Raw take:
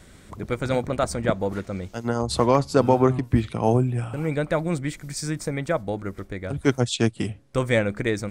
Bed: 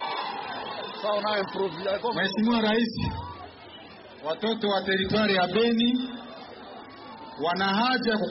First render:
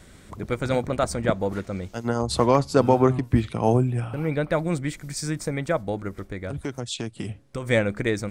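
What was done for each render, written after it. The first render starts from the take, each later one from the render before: 4.00–4.52 s: peaking EQ 7.5 kHz -14 dB 0.38 oct; 6.08–7.67 s: compression, threshold -26 dBFS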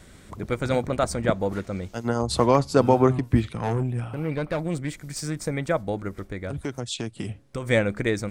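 3.48–5.42 s: valve stage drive 20 dB, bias 0.45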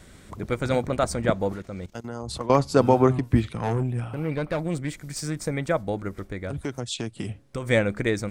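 1.52–2.50 s: level held to a coarse grid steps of 17 dB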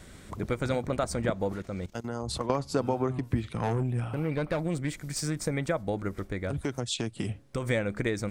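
compression 4:1, threshold -25 dBFS, peak gain reduction 11.5 dB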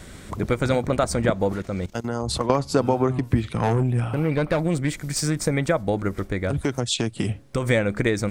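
trim +7.5 dB

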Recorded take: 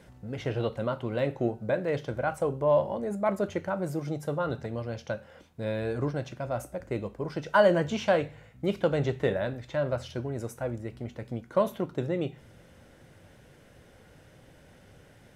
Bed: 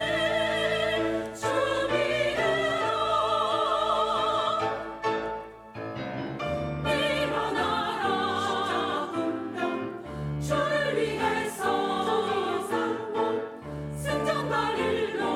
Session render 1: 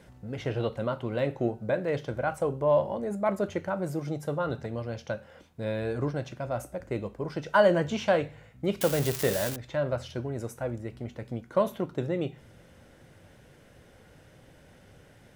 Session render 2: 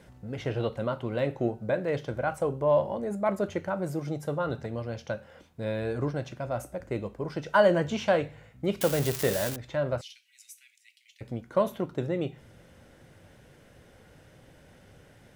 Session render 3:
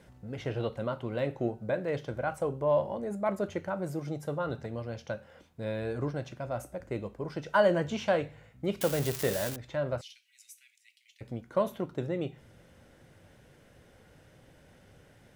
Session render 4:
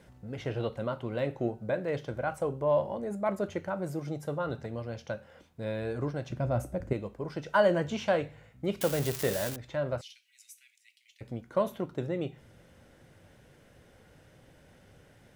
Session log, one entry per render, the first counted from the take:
8.81–9.56 s: zero-crossing glitches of -19.5 dBFS
10.01–11.21 s: steep high-pass 2.2 kHz 48 dB/octave
trim -3 dB
6.30–6.93 s: bass shelf 390 Hz +11.5 dB

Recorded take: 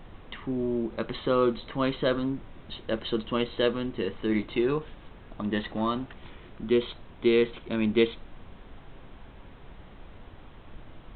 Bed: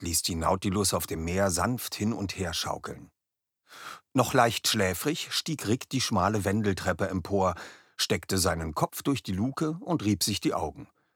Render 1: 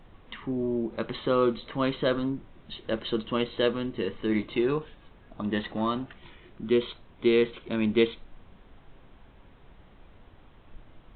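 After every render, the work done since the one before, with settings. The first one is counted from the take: noise print and reduce 6 dB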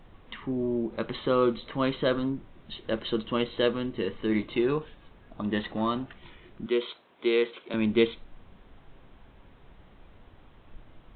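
6.66–7.74 s: high-pass 360 Hz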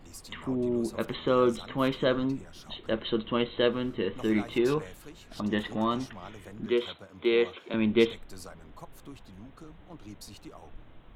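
add bed -20 dB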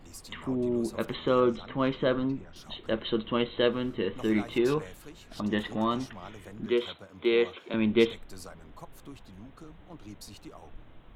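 1.40–2.56 s: distance through air 160 m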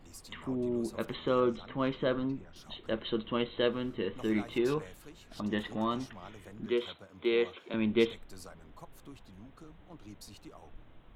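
trim -4 dB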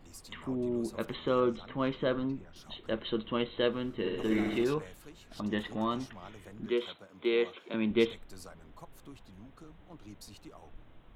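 3.92–4.64 s: flutter echo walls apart 11.6 m, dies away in 1.2 s; 6.69–7.91 s: high-pass 130 Hz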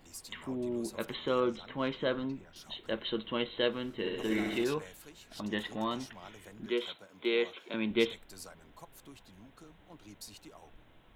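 tilt EQ +1.5 dB/octave; band-stop 1.2 kHz, Q 12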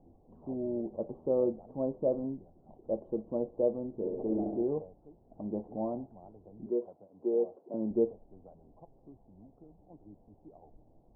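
dynamic bell 600 Hz, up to +6 dB, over -46 dBFS, Q 2.3; elliptic low-pass 780 Hz, stop band 60 dB

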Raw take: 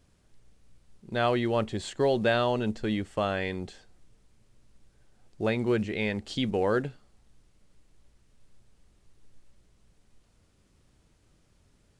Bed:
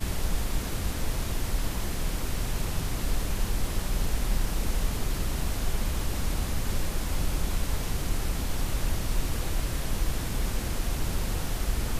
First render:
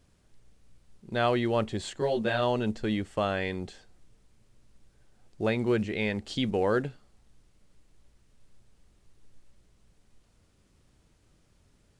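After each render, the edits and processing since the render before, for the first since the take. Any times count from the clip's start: 1.98–2.41 s: detune thickener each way 17 cents -> 28 cents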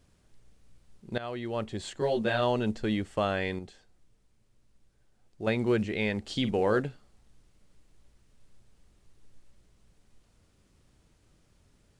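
1.18–2.09 s: fade in, from -16 dB; 3.59–5.47 s: gain -6 dB; 6.30–6.80 s: doubling 48 ms -12.5 dB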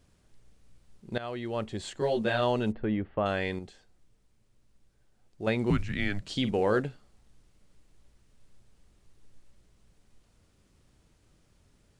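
2.72–3.26 s: Gaussian low-pass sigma 3.7 samples; 5.70–6.29 s: frequency shift -200 Hz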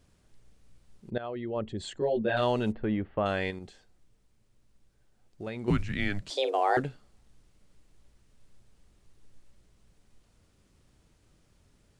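1.10–2.37 s: resonances exaggerated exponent 1.5; 3.50–5.68 s: compression 3:1, threshold -35 dBFS; 6.30–6.77 s: frequency shift +270 Hz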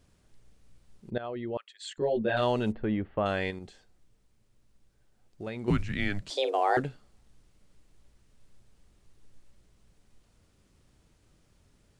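1.57–1.98 s: high-pass 1.5 kHz 24 dB/octave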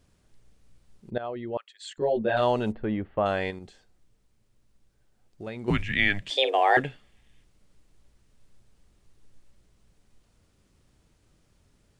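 5.74–7.44 s: time-frequency box 1.6–3.7 kHz +10 dB; dynamic bell 770 Hz, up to +5 dB, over -38 dBFS, Q 1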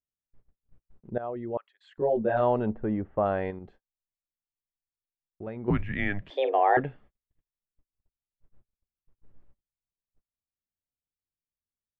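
gate -51 dBFS, range -39 dB; low-pass 1.3 kHz 12 dB/octave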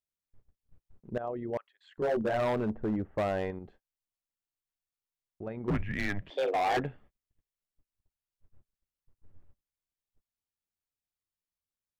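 AM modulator 88 Hz, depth 20%; hard clipper -25 dBFS, distortion -9 dB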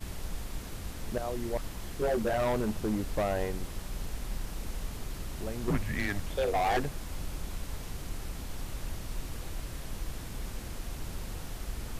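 add bed -9.5 dB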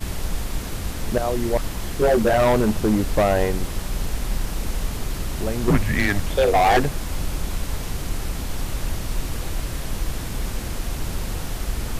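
trim +11.5 dB

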